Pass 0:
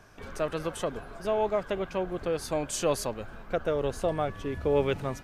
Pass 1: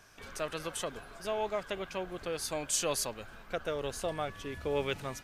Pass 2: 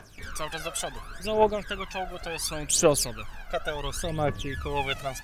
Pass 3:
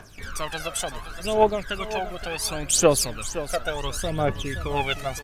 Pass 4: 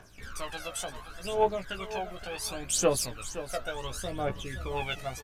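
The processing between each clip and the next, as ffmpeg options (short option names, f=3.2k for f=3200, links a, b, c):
-af "tiltshelf=f=1.5k:g=-6,volume=-2.5dB"
-af "aphaser=in_gain=1:out_gain=1:delay=1.6:decay=0.77:speed=0.7:type=triangular,volume=3dB"
-af "aecho=1:1:521|1042:0.224|0.0381,volume=3dB"
-filter_complex "[0:a]asplit=2[a][b];[b]adelay=16,volume=-5dB[c];[a][c]amix=inputs=2:normalize=0,volume=-8.5dB"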